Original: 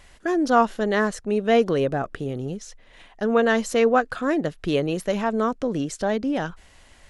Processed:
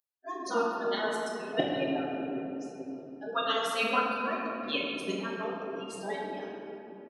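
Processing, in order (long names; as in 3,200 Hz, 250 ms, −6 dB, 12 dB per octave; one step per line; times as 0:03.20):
spectral dynamics exaggerated over time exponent 3
0:01.16–0:01.60: all-pass dispersion highs, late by 104 ms, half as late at 870 Hz
gate on every frequency bin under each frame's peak −15 dB weak
high-pass filter 180 Hz 12 dB per octave
parametric band 540 Hz +6 dB 2.7 octaves
notch filter 2,100 Hz, Q 6.4
double-tracking delay 41 ms −13.5 dB
delay with a low-pass on its return 606 ms, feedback 60%, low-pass 430 Hz, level −13 dB
rectangular room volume 130 cubic metres, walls hard, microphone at 0.6 metres
level +6 dB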